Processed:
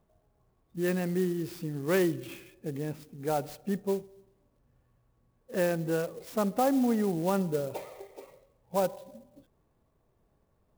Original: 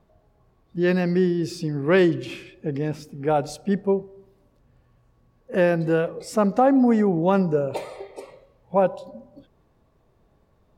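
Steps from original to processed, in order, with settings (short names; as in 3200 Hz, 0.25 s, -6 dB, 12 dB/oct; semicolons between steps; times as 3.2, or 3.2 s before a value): clock jitter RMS 0.04 ms; gain -8.5 dB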